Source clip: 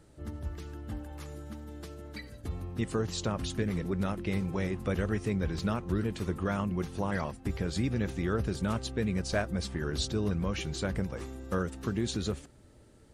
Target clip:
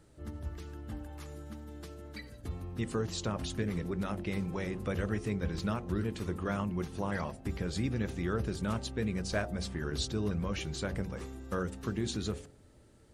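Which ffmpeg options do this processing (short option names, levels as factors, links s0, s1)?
-af "bandreject=f=47.49:t=h:w=4,bandreject=f=94.98:t=h:w=4,bandreject=f=142.47:t=h:w=4,bandreject=f=189.96:t=h:w=4,bandreject=f=237.45:t=h:w=4,bandreject=f=284.94:t=h:w=4,bandreject=f=332.43:t=h:w=4,bandreject=f=379.92:t=h:w=4,bandreject=f=427.41:t=h:w=4,bandreject=f=474.9:t=h:w=4,bandreject=f=522.39:t=h:w=4,bandreject=f=569.88:t=h:w=4,bandreject=f=617.37:t=h:w=4,bandreject=f=664.86:t=h:w=4,bandreject=f=712.35:t=h:w=4,bandreject=f=759.84:t=h:w=4,bandreject=f=807.33:t=h:w=4,bandreject=f=854.82:t=h:w=4,bandreject=f=902.31:t=h:w=4,volume=0.794"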